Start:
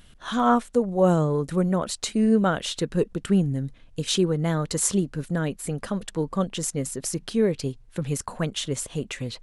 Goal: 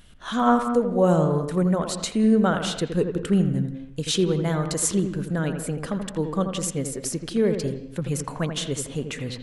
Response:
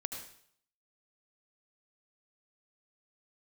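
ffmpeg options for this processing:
-filter_complex "[0:a]asplit=2[link_01][link_02];[1:a]atrim=start_sample=2205,lowpass=2400,adelay=83[link_03];[link_02][link_03]afir=irnorm=-1:irlink=0,volume=-5.5dB[link_04];[link_01][link_04]amix=inputs=2:normalize=0"

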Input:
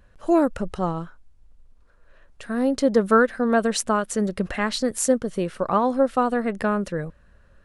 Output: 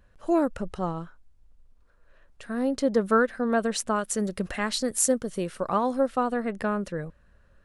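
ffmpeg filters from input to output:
ffmpeg -i in.wav -filter_complex "[0:a]asettb=1/sr,asplit=3[link_01][link_02][link_03];[link_01]atrim=end=3.964[link_04];[link_02]atrim=start=3.96:end=6.07,asetpts=PTS-STARTPTS,afade=type=in:duration=0.004:curve=qsin,afade=type=out:start_time=2.106:duration=0.004:curve=qsin,highshelf=frequency=5600:gain=9[link_05];[link_03]atrim=start=6.066[link_06];[link_04][link_05]acrossfade=duration=0.004:curve1=hsin:curve2=qsin[link_07];[link_07][link_06]acrossfade=duration=0.004:curve1=qsin:curve2=hsin,volume=-4.5dB" out.wav

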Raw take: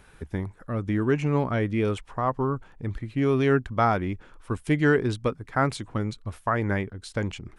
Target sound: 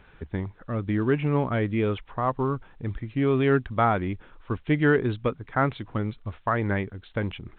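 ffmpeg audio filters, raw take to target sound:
ffmpeg -i in.wav -ar 8000 -c:a pcm_alaw out.wav

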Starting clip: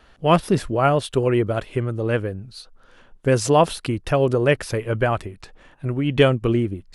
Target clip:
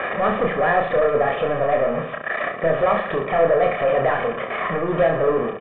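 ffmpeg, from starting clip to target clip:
ffmpeg -i in.wav -af "aeval=exprs='val(0)+0.5*0.119*sgn(val(0))':channel_layout=same,highpass=frequency=180:width=0.5412,highpass=frequency=180:width=1.3066,asetrate=54684,aresample=44100,aresample=8000,asoftclip=type=tanh:threshold=-21dB,aresample=44100,aecho=1:1:1.7:0.66,afftfilt=real='re*gte(hypot(re,im),0.00794)':imag='im*gte(hypot(re,im),0.00794)':win_size=1024:overlap=0.75,lowpass=frequency=2100:width=0.5412,lowpass=frequency=2100:width=1.3066,aecho=1:1:30|67.5|114.4|173|246.2:0.631|0.398|0.251|0.158|0.1,volume=3dB" out.wav

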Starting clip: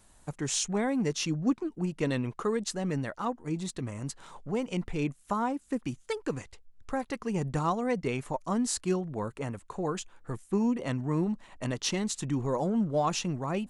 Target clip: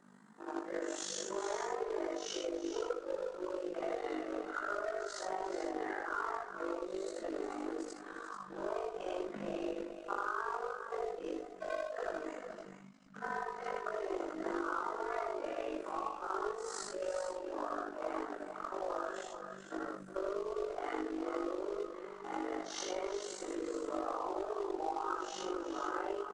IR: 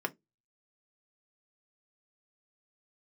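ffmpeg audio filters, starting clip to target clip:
-filter_complex "[0:a]afftfilt=real='re':imag='-im':win_size=4096:overlap=0.75,atempo=0.52,firequalizer=gain_entry='entry(260,0);entry(1300,9);entry(2200,-7)':delay=0.05:min_phase=1,afreqshift=190,flanger=delay=17.5:depth=4.1:speed=1.9,asplit=2[link_01][link_02];[link_02]acrusher=bits=2:mode=log:mix=0:aa=0.000001,volume=-7dB[link_03];[link_01][link_03]amix=inputs=2:normalize=0,acompressor=threshold=-37dB:ratio=5,lowpass=frequency=8000:width=0.5412,lowpass=frequency=8000:width=1.3066,asubboost=boost=6.5:cutoff=53,aecho=1:1:50|356|431|439:0.188|0.2|0.168|0.299,tremolo=f=50:d=0.75,volume=4.5dB"

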